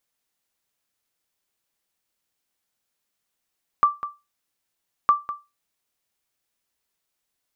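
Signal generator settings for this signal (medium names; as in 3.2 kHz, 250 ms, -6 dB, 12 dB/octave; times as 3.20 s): sonar ping 1.17 kHz, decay 0.24 s, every 1.26 s, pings 2, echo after 0.20 s, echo -13.5 dB -8.5 dBFS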